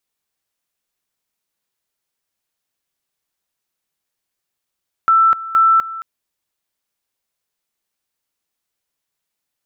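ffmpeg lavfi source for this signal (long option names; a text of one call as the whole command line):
ffmpeg -f lavfi -i "aevalsrc='pow(10,(-8.5-16.5*gte(mod(t,0.47),0.25))/20)*sin(2*PI*1330*t)':duration=0.94:sample_rate=44100" out.wav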